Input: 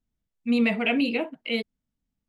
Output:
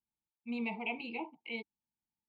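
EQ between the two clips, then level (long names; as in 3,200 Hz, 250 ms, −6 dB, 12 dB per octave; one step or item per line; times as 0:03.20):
formant filter u
phaser with its sweep stopped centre 680 Hz, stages 4
+8.5 dB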